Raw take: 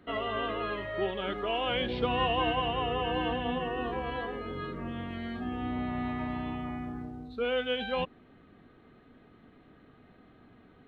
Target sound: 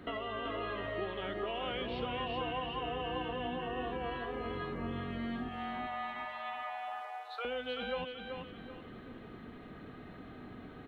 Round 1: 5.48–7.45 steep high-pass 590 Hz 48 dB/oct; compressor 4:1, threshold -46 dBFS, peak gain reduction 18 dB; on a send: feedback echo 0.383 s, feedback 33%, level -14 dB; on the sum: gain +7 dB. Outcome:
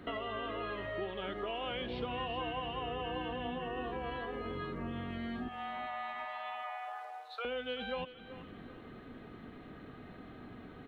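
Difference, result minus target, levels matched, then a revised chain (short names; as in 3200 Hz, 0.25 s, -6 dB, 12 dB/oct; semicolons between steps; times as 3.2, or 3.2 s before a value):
echo-to-direct -8.5 dB
5.48–7.45 steep high-pass 590 Hz 48 dB/oct; compressor 4:1, threshold -46 dBFS, peak gain reduction 18 dB; on a send: feedback echo 0.383 s, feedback 33%, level -5.5 dB; on the sum: gain +7 dB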